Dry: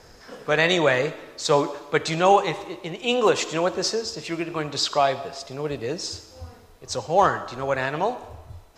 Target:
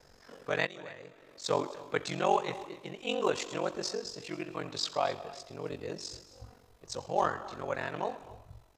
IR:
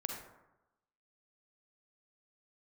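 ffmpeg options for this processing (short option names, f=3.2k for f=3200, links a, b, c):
-filter_complex "[0:a]asplit=3[a][b][c];[a]afade=t=out:st=0.65:d=0.02[d];[b]acompressor=threshold=-37dB:ratio=4,afade=t=in:st=0.65:d=0.02,afade=t=out:st=1.42:d=0.02[e];[c]afade=t=in:st=1.42:d=0.02[f];[d][e][f]amix=inputs=3:normalize=0,aeval=exprs='val(0)*sin(2*PI*23*n/s)':c=same,asplit=2[g][h];[h]aecho=0:1:268:0.112[i];[g][i]amix=inputs=2:normalize=0,volume=-7.5dB"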